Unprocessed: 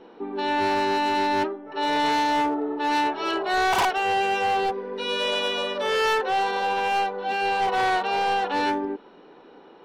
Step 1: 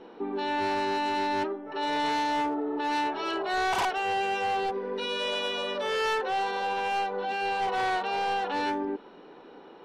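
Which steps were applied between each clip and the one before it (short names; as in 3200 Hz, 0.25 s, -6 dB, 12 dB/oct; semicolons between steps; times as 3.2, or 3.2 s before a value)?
LPF 12000 Hz 12 dB/oct; limiter -24 dBFS, peak gain reduction 6 dB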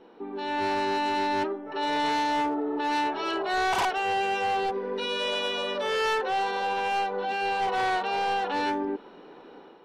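AGC gain up to 6.5 dB; gain -5 dB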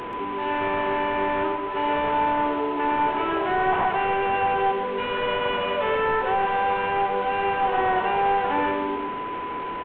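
delta modulation 16 kbps, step -33 dBFS; whine 1000 Hz -36 dBFS; on a send: echo 0.131 s -7 dB; on the sum: gain +3.5 dB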